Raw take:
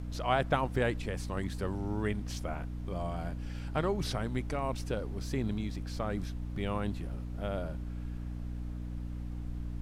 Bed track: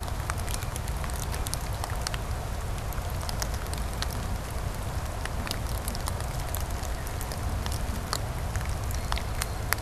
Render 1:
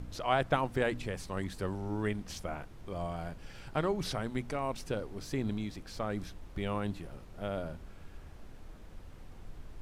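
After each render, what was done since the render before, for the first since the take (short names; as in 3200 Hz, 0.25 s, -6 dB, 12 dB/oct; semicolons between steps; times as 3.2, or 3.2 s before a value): de-hum 60 Hz, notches 5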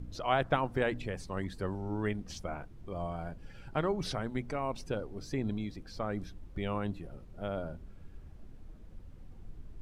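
denoiser 10 dB, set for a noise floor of -50 dBFS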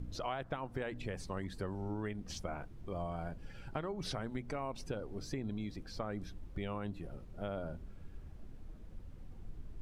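compressor 12:1, threshold -35 dBFS, peak gain reduction 13 dB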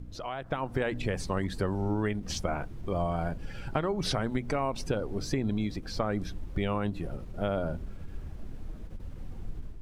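AGC gain up to 10 dB; ending taper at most 230 dB/s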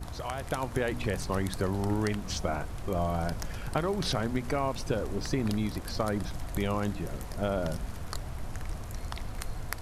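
add bed track -9.5 dB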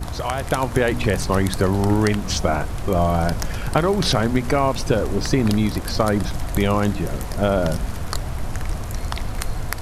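gain +11 dB; limiter -3 dBFS, peak gain reduction 2.5 dB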